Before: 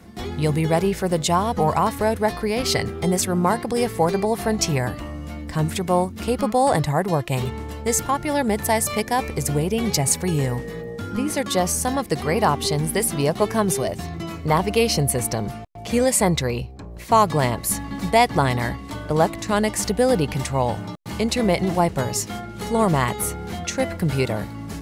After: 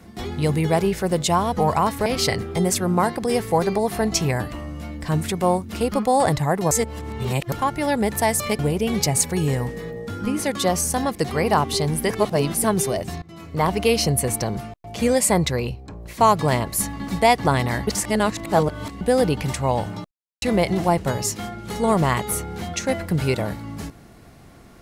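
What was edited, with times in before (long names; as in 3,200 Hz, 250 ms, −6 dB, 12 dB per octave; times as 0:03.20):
0:02.06–0:02.53: remove
0:07.18–0:07.99: reverse
0:09.06–0:09.50: remove
0:13.01–0:13.55: reverse
0:14.13–0:14.64: fade in, from −21.5 dB
0:18.78–0:19.92: reverse
0:21.02–0:21.33: silence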